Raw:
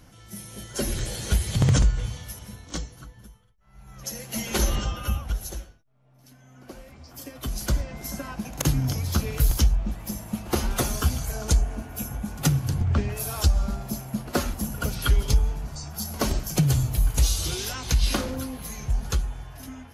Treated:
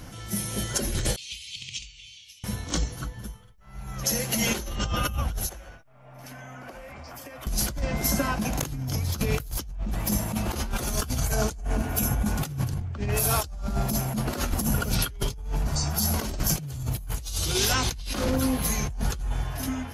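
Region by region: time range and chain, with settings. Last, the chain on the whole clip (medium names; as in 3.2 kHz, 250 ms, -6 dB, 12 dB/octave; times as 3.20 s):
1.16–2.44 s: elliptic high-pass 2.5 kHz + tape spacing loss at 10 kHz 25 dB
5.49–7.47 s: high-order bell 1.2 kHz +8.5 dB 2.6 oct + band-stop 4.1 kHz, Q 28 + compression 20:1, threshold -47 dBFS
whole clip: compressor with a negative ratio -32 dBFS, ratio -1; endings held to a fixed fall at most 250 dB/s; trim +4 dB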